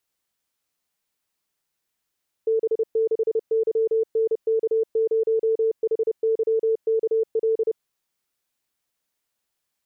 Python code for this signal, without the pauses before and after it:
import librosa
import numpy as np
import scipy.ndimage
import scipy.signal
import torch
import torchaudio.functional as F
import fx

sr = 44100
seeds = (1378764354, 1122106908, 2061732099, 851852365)

y = fx.morse(sr, text='B6YNK0HYKL', wpm=30, hz=446.0, level_db=-17.5)